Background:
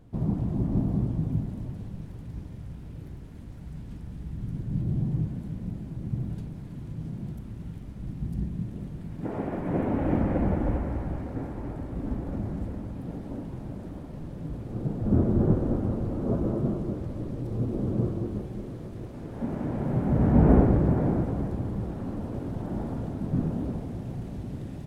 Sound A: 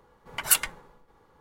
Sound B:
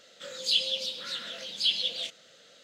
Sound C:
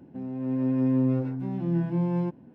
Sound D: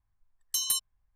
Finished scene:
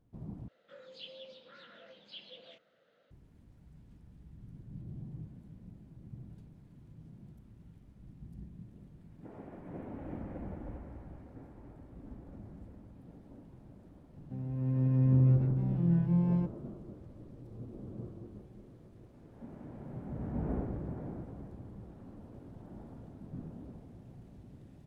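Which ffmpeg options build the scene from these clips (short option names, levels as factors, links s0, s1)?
-filter_complex "[0:a]volume=0.141[s0];[2:a]lowpass=1500[s1];[3:a]lowshelf=f=180:t=q:w=1.5:g=12[s2];[s0]asplit=2[s3][s4];[s3]atrim=end=0.484[s5];[s1]atrim=end=2.63,asetpts=PTS-STARTPTS,volume=0.355[s6];[s4]atrim=start=3.106[s7];[s2]atrim=end=2.54,asetpts=PTS-STARTPTS,volume=0.376,afade=t=in:d=0.004:c=hsin,afade=t=out:st=2.536:d=0.004:c=hsin,adelay=14160[s8];[s5][s6]acrossfade=d=0.004:c1=hsin:c2=hsin[s9];[s9][s7]acrossfade=d=0.004:c1=hsin:c2=hsin[s10];[s10][s8]amix=inputs=2:normalize=0"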